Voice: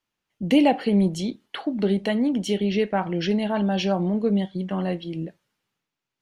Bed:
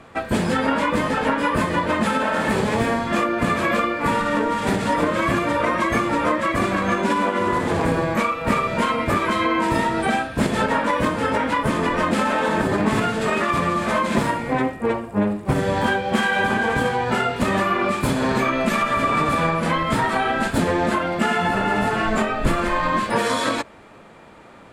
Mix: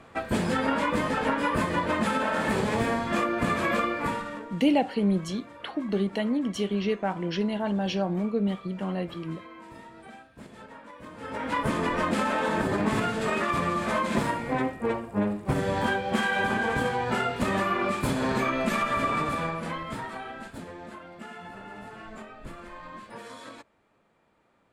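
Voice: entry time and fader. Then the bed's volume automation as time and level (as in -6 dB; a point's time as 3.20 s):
4.10 s, -4.5 dB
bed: 3.99 s -5.5 dB
4.66 s -26 dB
10.99 s -26 dB
11.56 s -6 dB
19.02 s -6 dB
20.76 s -22 dB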